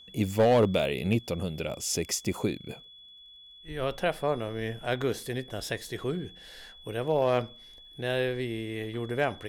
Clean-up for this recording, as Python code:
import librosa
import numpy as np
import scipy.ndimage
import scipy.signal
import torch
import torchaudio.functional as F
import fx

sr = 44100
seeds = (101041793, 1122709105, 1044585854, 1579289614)

y = fx.fix_declip(x, sr, threshold_db=-16.0)
y = fx.fix_declick_ar(y, sr, threshold=6.5)
y = fx.notch(y, sr, hz=3400.0, q=30.0)